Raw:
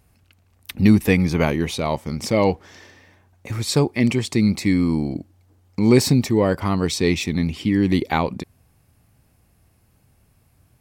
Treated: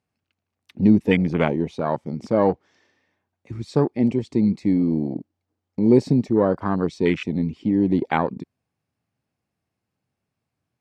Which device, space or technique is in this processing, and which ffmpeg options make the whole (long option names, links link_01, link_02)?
over-cleaned archive recording: -af "highpass=150,lowpass=6200,afwtdn=0.0562"